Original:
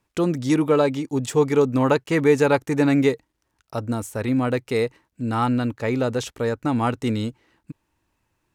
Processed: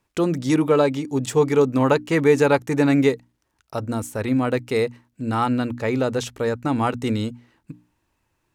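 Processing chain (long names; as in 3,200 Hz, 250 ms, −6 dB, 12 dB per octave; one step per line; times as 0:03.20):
mains-hum notches 60/120/180/240/300 Hz
level +1 dB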